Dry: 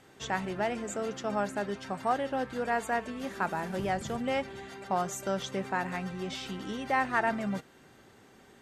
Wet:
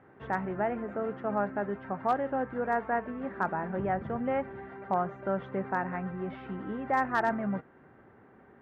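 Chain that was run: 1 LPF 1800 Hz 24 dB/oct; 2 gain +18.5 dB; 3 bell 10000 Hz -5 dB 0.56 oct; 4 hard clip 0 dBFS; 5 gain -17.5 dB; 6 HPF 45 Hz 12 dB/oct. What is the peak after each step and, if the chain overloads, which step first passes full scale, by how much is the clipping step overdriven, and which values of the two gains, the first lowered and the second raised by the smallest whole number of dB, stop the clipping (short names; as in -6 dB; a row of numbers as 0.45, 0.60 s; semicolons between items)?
-15.0, +3.5, +3.5, 0.0, -17.5, -16.5 dBFS; step 2, 3.5 dB; step 2 +14.5 dB, step 5 -13.5 dB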